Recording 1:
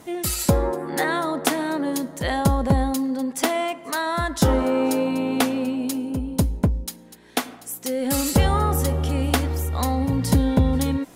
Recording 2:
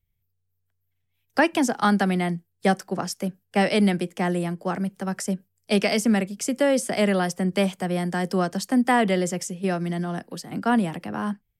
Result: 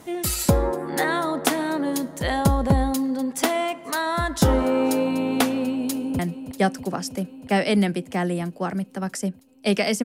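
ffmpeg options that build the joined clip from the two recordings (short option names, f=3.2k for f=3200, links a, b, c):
-filter_complex "[0:a]apad=whole_dur=10.04,atrim=end=10.04,atrim=end=6.192[a];[1:a]atrim=start=2.238:end=6.09[b];[a][b]acrossfade=d=0.004:c1=hsin:c2=hsin,asplit=2[c][d];[d]afade=t=in:st=5.63:d=0.01,afade=t=out:st=6.19:d=0.01,aecho=0:1:320|640|960|1280|1600|1920|2240|2560|2880|3200|3520|3840:0.251189|0.200951|0.160761|0.128609|0.102887|0.0823095|0.0658476|0.0526781|0.0421425|0.033714|0.0269712|0.0215769[e];[c][e]amix=inputs=2:normalize=0"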